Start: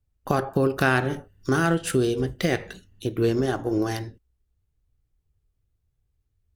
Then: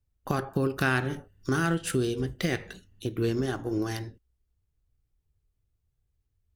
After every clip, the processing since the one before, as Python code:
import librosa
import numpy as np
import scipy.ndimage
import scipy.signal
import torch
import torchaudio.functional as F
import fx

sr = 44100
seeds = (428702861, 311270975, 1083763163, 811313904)

y = fx.dynamic_eq(x, sr, hz=620.0, q=1.1, threshold_db=-35.0, ratio=4.0, max_db=-6)
y = y * librosa.db_to_amplitude(-3.0)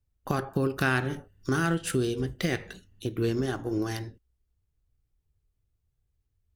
y = x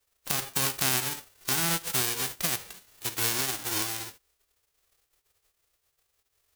y = fx.envelope_flatten(x, sr, power=0.1)
y = y * librosa.db_to_amplitude(-1.0)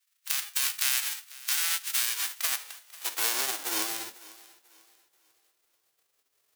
y = fx.filter_sweep_highpass(x, sr, from_hz=1800.0, to_hz=200.0, start_s=1.94, end_s=4.48, q=0.92)
y = fx.echo_thinned(y, sr, ms=494, feedback_pct=33, hz=160.0, wet_db=-20)